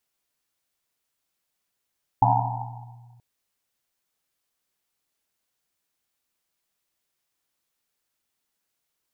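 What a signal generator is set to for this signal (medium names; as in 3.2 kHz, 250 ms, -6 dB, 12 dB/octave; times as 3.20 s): Risset drum length 0.98 s, pitch 120 Hz, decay 2.06 s, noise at 840 Hz, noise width 220 Hz, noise 65%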